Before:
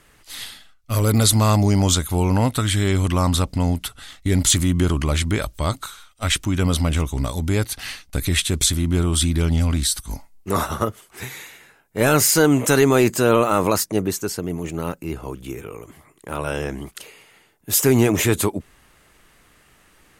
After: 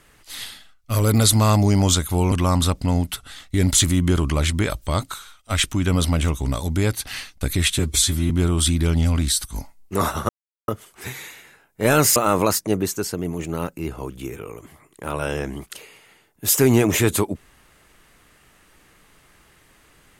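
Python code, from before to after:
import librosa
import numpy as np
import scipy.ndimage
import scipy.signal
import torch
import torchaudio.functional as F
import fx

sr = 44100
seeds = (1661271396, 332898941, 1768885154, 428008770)

y = fx.edit(x, sr, fx.cut(start_s=2.32, length_s=0.72),
    fx.stretch_span(start_s=8.51, length_s=0.34, factor=1.5),
    fx.insert_silence(at_s=10.84, length_s=0.39),
    fx.cut(start_s=12.32, length_s=1.09), tone=tone)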